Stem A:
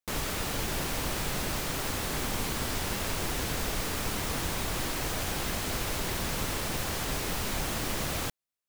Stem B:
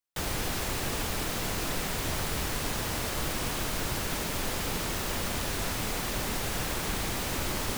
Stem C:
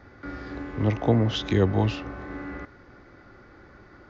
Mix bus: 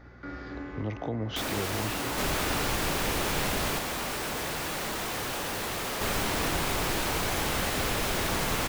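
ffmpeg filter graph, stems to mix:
-filter_complex "[0:a]adelay=2100,volume=2.5dB,asplit=3[a][b][c];[a]atrim=end=3.79,asetpts=PTS-STARTPTS,afade=t=out:st=3.786:d=0.004:c=hsin[d];[b]atrim=start=3.79:end=6.01,asetpts=PTS-STARTPTS,volume=0[e];[c]atrim=start=6.01,asetpts=PTS-STARTPTS,afade=t=in:d=0.004:c=hsin[f];[d][e][f]concat=n=3:v=0:a=1[g];[1:a]equalizer=f=150:w=0.34:g=12.5,aeval=exprs='0.112*sin(PI/2*3.98*val(0)/0.112)':c=same,adelay=1200,volume=-9.5dB[h];[2:a]highshelf=f=4.7k:g=6,alimiter=limit=-20.5dB:level=0:latency=1:release=200,aeval=exprs='val(0)+0.00501*(sin(2*PI*60*n/s)+sin(2*PI*2*60*n/s)/2+sin(2*PI*3*60*n/s)/3+sin(2*PI*4*60*n/s)/4+sin(2*PI*5*60*n/s)/5)':c=same,volume=-2.5dB[i];[g][h][i]amix=inputs=3:normalize=0,bass=f=250:g=-2,treble=f=4k:g=-4"

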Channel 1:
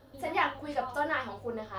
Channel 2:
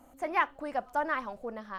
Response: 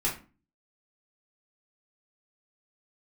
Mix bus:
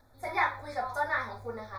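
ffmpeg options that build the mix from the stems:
-filter_complex "[0:a]equalizer=f=260:w=0.88:g=-14,volume=-1.5dB,asplit=2[a][b];[b]volume=-9dB[c];[1:a]adelay=11,volume=-11.5dB,asplit=2[d][e];[e]apad=whole_len=78932[f];[a][f]sidechaingate=range=-33dB:threshold=-60dB:ratio=16:detection=peak[g];[2:a]atrim=start_sample=2205[h];[c][h]afir=irnorm=-1:irlink=0[i];[g][d][i]amix=inputs=3:normalize=0,asuperstop=centerf=2900:order=8:qfactor=2.8"

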